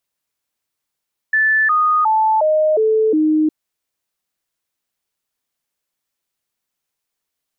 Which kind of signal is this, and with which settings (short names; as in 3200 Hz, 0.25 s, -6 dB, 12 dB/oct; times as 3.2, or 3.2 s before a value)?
stepped sine 1750 Hz down, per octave 2, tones 6, 0.36 s, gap 0.00 s -11.5 dBFS